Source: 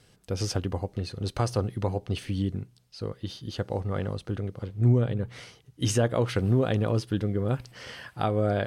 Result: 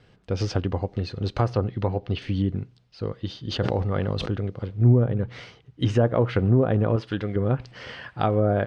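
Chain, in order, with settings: low-pass that closes with the level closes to 1.3 kHz, closed at -20 dBFS; 1.53–2.22 s: Chebyshev low-pass 4.9 kHz, order 2; level-controlled noise filter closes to 2.9 kHz, open at -19.5 dBFS; 6.96–7.36 s: tilt shelf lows -6.5 dB, about 630 Hz; speakerphone echo 90 ms, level -26 dB; 3.40–4.30 s: decay stretcher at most 30 dB/s; trim +4 dB

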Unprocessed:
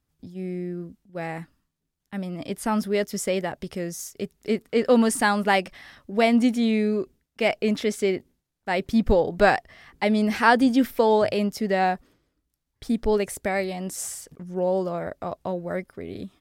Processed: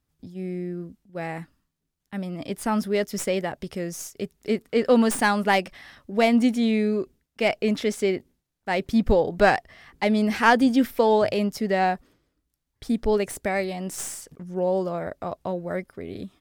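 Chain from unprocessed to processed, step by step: tracing distortion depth 0.033 ms

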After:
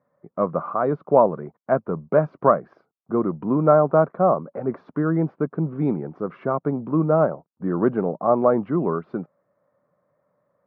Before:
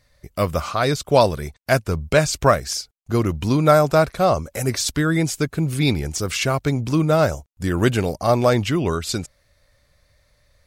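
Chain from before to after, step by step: elliptic band-pass 170–1200 Hz, stop band 70 dB

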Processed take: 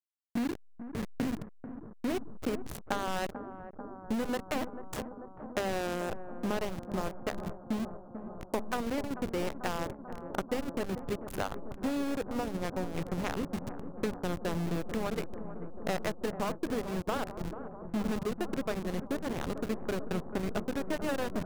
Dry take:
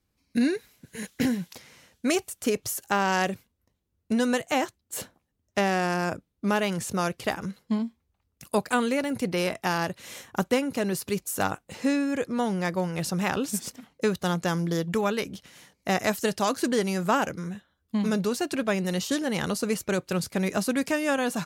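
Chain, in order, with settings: median filter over 9 samples; treble shelf 6.4 kHz +4 dB; hum notches 50/100/150/200/250/300 Hz; compression 3:1, threshold -40 dBFS, peak gain reduction 15.5 dB; in parallel at -7 dB: bit crusher 6-bit; on the sum: hysteresis with a dead band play -30 dBFS; on a send: bucket-brigade echo 441 ms, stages 4096, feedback 81%, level -12 dB; on the sum: trim +4 dB

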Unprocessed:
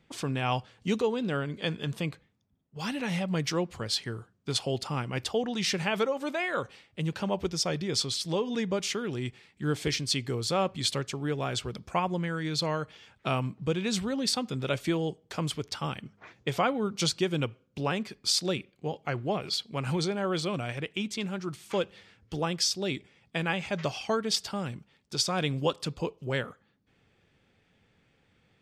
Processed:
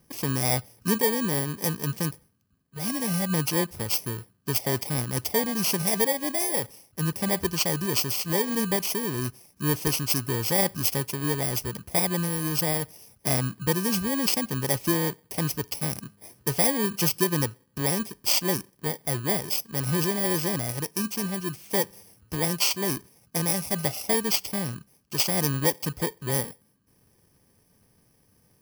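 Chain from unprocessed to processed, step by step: bit-reversed sample order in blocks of 32 samples; trim +4 dB

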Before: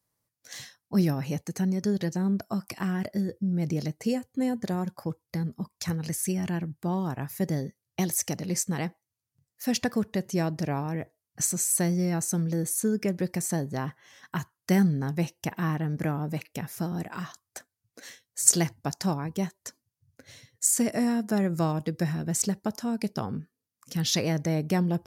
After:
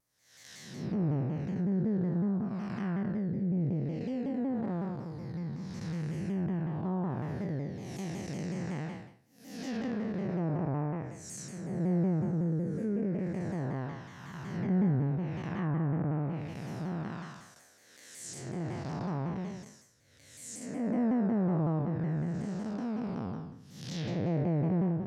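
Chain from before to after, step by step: spectral blur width 351 ms; low-pass that closes with the level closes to 1.3 kHz, closed at -28 dBFS; vibrato with a chosen wave saw down 5.4 Hz, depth 160 cents

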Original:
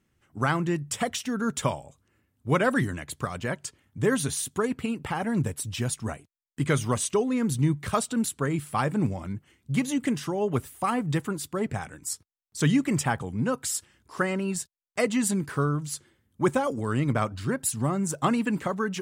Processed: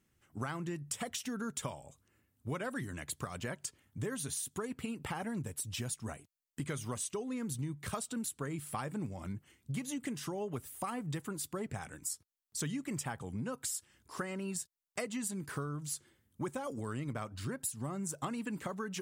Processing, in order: treble shelf 5.8 kHz +7.5 dB; compression 6:1, threshold -31 dBFS, peak gain reduction 13 dB; trim -4.5 dB

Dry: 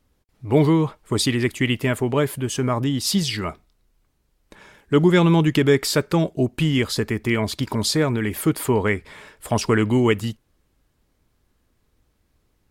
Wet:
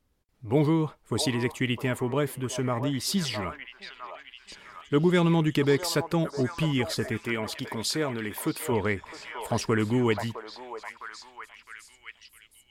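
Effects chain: 7.17–8.72 s: bass shelf 180 Hz -10 dB; repeats whose band climbs or falls 659 ms, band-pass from 780 Hz, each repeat 0.7 oct, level -3.5 dB; trim -6.5 dB

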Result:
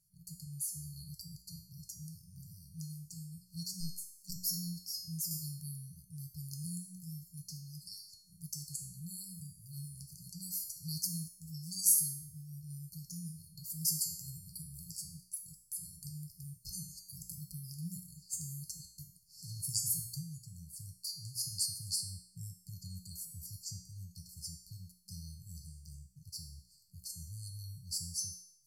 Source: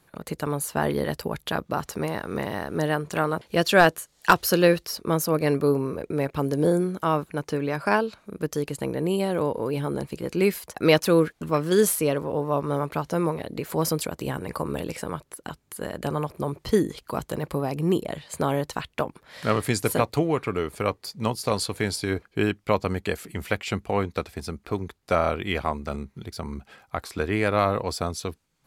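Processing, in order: hum notches 60/120/180 Hz; feedback comb 360 Hz, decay 0.7 s, mix 90%; treble shelf 3.9 kHz +4.5 dB, from 5.31 s +12 dB; FFT band-reject 190–4300 Hz; trim +5.5 dB

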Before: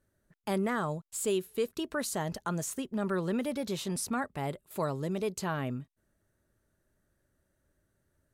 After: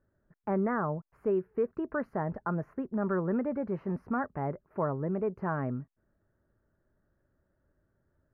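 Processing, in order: inverse Chebyshev low-pass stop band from 3.3 kHz, stop band 40 dB; trim +1.5 dB

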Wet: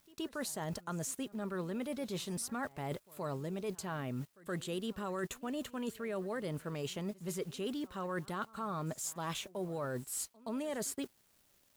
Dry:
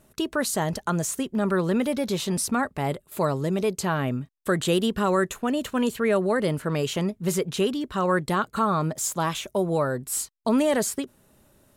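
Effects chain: added noise white -55 dBFS; crossover distortion -51 dBFS; reverse; compression 6:1, threshold -31 dBFS, peak gain reduction 12.5 dB; reverse; reverse echo 122 ms -22.5 dB; trim -5 dB

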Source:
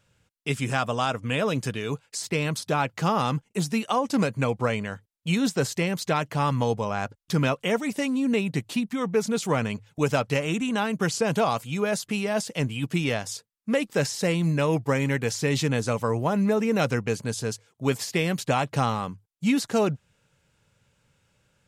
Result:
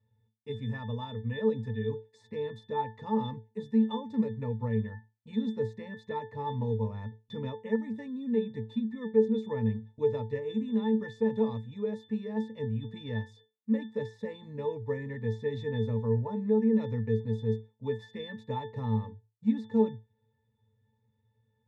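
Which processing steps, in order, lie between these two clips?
pitch-class resonator A, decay 0.25 s; trim +5.5 dB

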